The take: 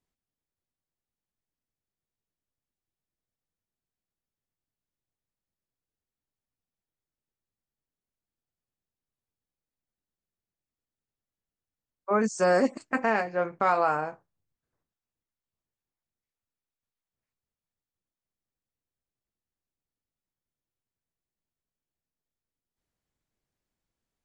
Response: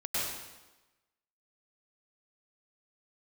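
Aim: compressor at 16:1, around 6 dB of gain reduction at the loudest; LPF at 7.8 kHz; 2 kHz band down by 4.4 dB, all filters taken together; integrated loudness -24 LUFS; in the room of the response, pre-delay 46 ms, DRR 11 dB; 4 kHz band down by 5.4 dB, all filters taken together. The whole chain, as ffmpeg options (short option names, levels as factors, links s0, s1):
-filter_complex "[0:a]lowpass=7800,equalizer=f=2000:t=o:g=-5,equalizer=f=4000:t=o:g=-5.5,acompressor=threshold=0.0631:ratio=16,asplit=2[s0][s1];[1:a]atrim=start_sample=2205,adelay=46[s2];[s1][s2]afir=irnorm=-1:irlink=0,volume=0.126[s3];[s0][s3]amix=inputs=2:normalize=0,volume=2.24"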